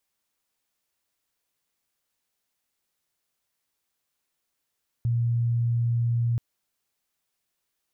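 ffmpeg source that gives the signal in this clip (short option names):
-f lavfi -i "sine=f=118:d=1.33:r=44100,volume=-2.94dB"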